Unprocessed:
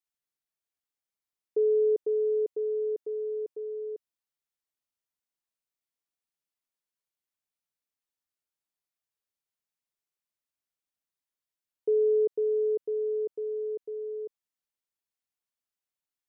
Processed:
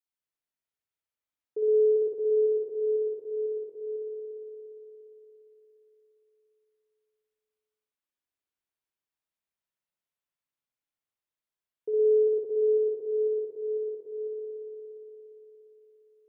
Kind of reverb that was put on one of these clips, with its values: spring tank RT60 4 s, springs 58 ms, chirp 60 ms, DRR -5 dB; gain -6 dB

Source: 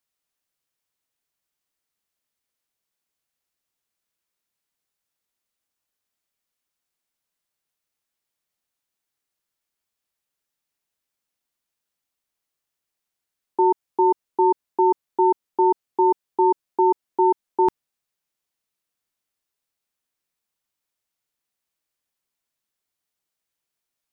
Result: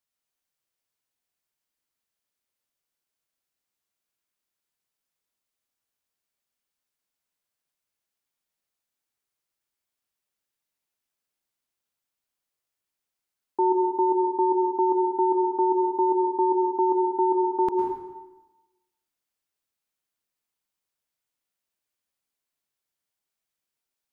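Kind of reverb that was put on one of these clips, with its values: plate-style reverb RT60 1.1 s, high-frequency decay 0.8×, pre-delay 95 ms, DRR 2 dB; gain -4.5 dB

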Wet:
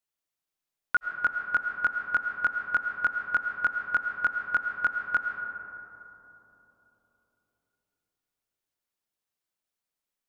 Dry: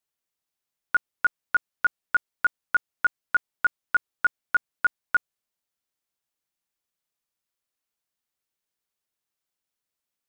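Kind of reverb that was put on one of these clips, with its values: digital reverb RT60 3.8 s, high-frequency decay 0.25×, pre-delay 65 ms, DRR 4 dB; gain -3 dB

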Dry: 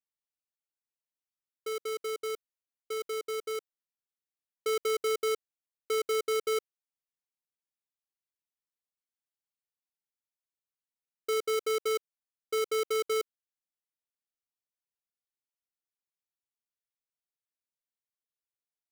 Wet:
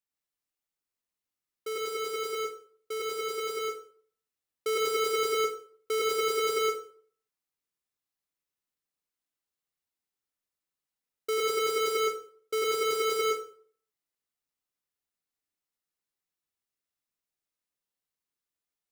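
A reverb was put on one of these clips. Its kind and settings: plate-style reverb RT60 0.53 s, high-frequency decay 0.7×, pre-delay 85 ms, DRR -2 dB

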